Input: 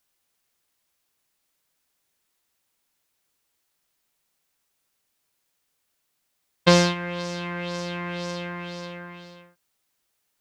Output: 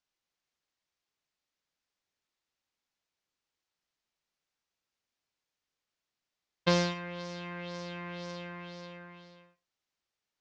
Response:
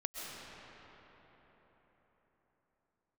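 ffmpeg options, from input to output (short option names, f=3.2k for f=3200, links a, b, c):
-filter_complex "[0:a]lowpass=f=6.4k:w=0.5412,lowpass=f=6.4k:w=1.3066[a];[1:a]atrim=start_sample=2205,afade=t=out:st=0.16:d=0.01,atrim=end_sample=7497[b];[a][b]afir=irnorm=-1:irlink=0,volume=-7dB"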